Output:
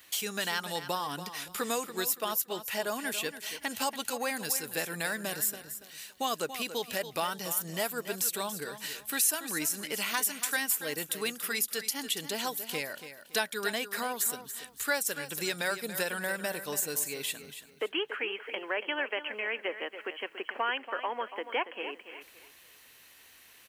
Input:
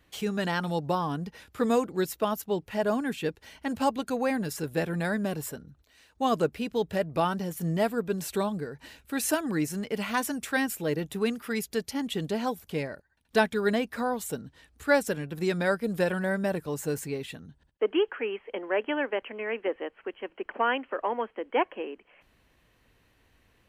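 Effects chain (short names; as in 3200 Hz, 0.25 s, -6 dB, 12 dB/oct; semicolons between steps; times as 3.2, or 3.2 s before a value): tilt +4.5 dB/oct; compressor 2:1, threshold -41 dBFS, peak gain reduction 15.5 dB; feedback echo 0.283 s, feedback 29%, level -11.5 dB; gain +5 dB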